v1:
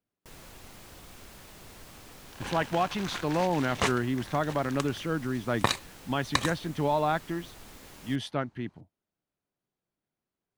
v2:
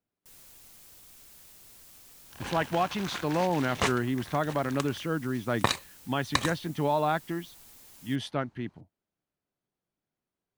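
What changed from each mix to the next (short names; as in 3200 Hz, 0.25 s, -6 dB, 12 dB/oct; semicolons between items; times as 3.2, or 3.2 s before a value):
first sound: add pre-emphasis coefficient 0.8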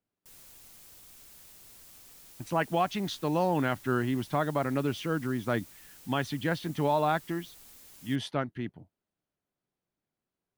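second sound: muted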